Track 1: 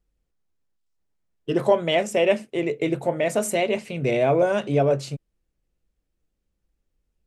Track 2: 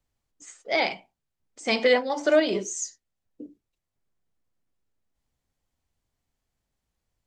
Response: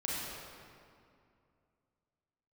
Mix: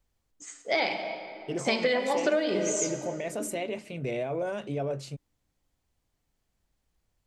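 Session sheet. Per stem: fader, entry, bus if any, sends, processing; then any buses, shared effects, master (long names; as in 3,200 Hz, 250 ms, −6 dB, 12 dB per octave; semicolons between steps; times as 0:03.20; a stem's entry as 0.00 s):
−7.5 dB, 0.00 s, no send, brickwall limiter −16 dBFS, peak gain reduction 9.5 dB
0.0 dB, 0.00 s, send −11 dB, no processing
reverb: on, RT60 2.4 s, pre-delay 30 ms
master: downward compressor 10 to 1, threshold −22 dBFS, peak gain reduction 10.5 dB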